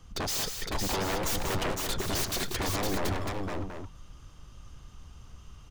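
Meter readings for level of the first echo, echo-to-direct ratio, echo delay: −17.0 dB, −1.0 dB, 112 ms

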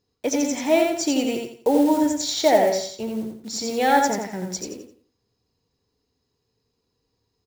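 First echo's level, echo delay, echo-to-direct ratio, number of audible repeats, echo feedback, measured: −4.0 dB, 86 ms, −3.5 dB, 4, 31%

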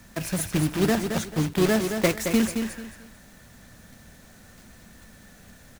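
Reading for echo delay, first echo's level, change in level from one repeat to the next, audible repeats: 220 ms, −7.0 dB, −11.5 dB, 3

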